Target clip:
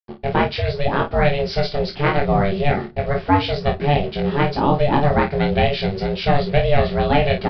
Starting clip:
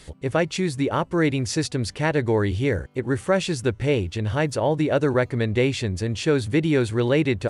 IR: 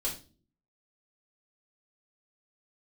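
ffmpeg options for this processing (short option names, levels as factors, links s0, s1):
-filter_complex "[0:a]agate=range=0.0224:threshold=0.0178:ratio=3:detection=peak,acrusher=bits=6:mix=0:aa=0.5,aeval=exprs='val(0)*sin(2*PI*290*n/s)':c=same,aecho=1:1:22|50:0.668|0.355,asplit=2[s0][s1];[1:a]atrim=start_sample=2205[s2];[s1][s2]afir=irnorm=-1:irlink=0,volume=0.119[s3];[s0][s3]amix=inputs=2:normalize=0,aresample=11025,aresample=44100,volume=1.68"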